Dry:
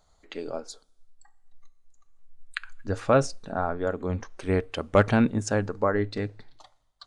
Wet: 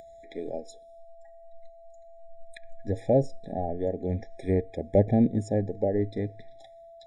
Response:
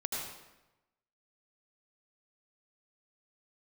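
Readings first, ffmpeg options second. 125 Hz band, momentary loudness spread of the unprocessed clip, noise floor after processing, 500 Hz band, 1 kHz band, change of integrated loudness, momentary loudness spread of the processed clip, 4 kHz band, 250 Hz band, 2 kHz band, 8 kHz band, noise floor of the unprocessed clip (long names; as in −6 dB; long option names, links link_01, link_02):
0.0 dB, 16 LU, −50 dBFS, −1.0 dB, −7.5 dB, −1.5 dB, 14 LU, below −10 dB, 0.0 dB, −17.0 dB, below −10 dB, −66 dBFS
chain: -filter_complex "[0:a]acrossover=split=860[link_01][link_02];[link_02]acompressor=threshold=-46dB:ratio=5[link_03];[link_01][link_03]amix=inputs=2:normalize=0,aeval=exprs='val(0)+0.00355*sin(2*PI*670*n/s)':channel_layout=same,acompressor=mode=upward:threshold=-45dB:ratio=2.5,afftfilt=real='re*eq(mod(floor(b*sr/1024/820),2),0)':imag='im*eq(mod(floor(b*sr/1024/820),2),0)':win_size=1024:overlap=0.75"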